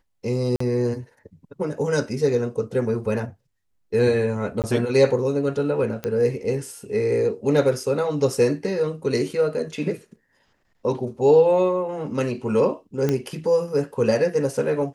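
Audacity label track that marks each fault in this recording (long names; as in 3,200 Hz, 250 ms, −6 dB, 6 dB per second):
0.560000	0.600000	drop-out 44 ms
4.620000	4.640000	drop-out 18 ms
6.040000	6.040000	click −14 dBFS
13.090000	13.090000	click −10 dBFS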